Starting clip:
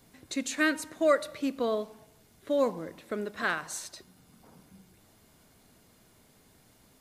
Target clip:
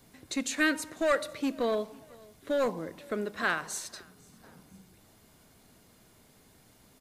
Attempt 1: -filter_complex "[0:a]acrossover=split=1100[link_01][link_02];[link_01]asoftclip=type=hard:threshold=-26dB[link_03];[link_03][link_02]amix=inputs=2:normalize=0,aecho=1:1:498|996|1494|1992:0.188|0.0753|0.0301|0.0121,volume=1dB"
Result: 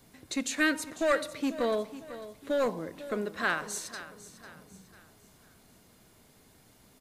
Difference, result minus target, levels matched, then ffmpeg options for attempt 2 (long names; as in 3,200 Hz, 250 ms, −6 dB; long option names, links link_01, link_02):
echo-to-direct +10.5 dB
-filter_complex "[0:a]acrossover=split=1100[link_01][link_02];[link_01]asoftclip=type=hard:threshold=-26dB[link_03];[link_03][link_02]amix=inputs=2:normalize=0,aecho=1:1:498|996:0.0562|0.0225,volume=1dB"